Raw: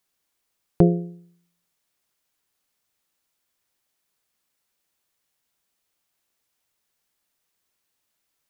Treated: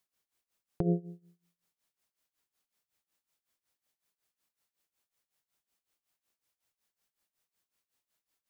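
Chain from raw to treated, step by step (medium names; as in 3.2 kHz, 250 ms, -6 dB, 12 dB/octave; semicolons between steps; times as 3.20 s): tremolo 5.4 Hz, depth 87%; trim -3.5 dB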